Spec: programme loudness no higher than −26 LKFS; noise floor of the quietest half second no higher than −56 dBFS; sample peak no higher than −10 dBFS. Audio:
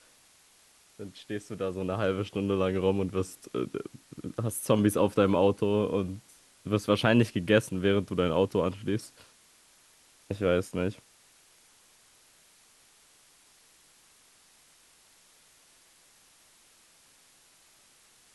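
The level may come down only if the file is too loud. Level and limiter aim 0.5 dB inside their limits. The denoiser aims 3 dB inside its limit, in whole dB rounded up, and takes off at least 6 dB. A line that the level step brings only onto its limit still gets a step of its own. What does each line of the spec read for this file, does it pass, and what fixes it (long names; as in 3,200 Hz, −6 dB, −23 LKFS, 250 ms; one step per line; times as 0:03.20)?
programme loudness −28.5 LKFS: in spec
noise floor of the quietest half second −61 dBFS: in spec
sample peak −8.0 dBFS: out of spec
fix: brickwall limiter −10.5 dBFS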